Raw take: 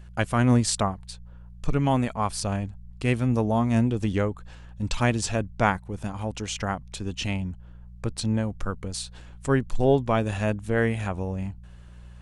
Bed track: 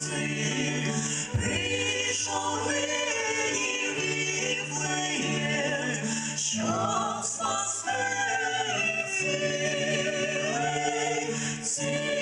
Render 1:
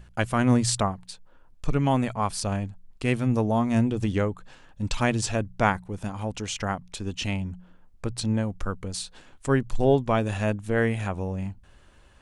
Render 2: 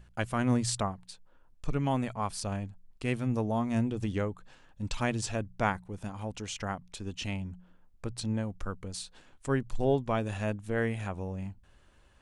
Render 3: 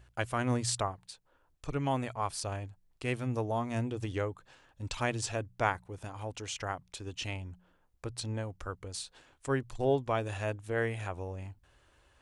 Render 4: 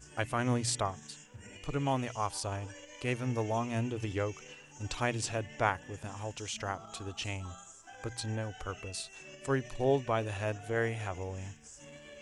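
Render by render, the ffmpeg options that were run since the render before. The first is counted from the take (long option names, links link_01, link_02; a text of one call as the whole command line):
ffmpeg -i in.wav -af "bandreject=frequency=60:width_type=h:width=4,bandreject=frequency=120:width_type=h:width=4,bandreject=frequency=180:width_type=h:width=4" out.wav
ffmpeg -i in.wav -af "volume=-6.5dB" out.wav
ffmpeg -i in.wav -af "highpass=frequency=64:poles=1,equalizer=frequency=200:width=3.4:gain=-14.5" out.wav
ffmpeg -i in.wav -i bed.wav -filter_complex "[1:a]volume=-22.5dB[link_01];[0:a][link_01]amix=inputs=2:normalize=0" out.wav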